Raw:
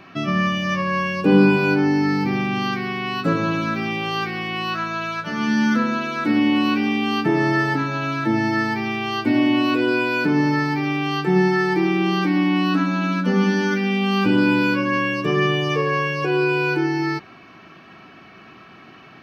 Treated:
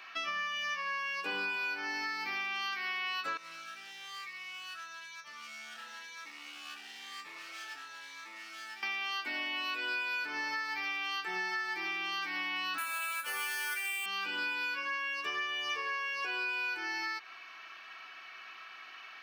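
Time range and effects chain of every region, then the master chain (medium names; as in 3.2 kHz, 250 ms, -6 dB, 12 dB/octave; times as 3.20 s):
3.37–8.83 s: hard clipper -21.5 dBFS + feedback comb 170 Hz, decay 0.47 s, harmonics odd, mix 80% + Shepard-style phaser rising 1 Hz
12.78–14.06 s: careless resampling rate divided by 4×, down none, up hold + high-pass 460 Hz + peaking EQ 2.5 kHz +5.5 dB 0.32 oct
whole clip: high-pass 1.4 kHz 12 dB/octave; compression, threshold -33 dBFS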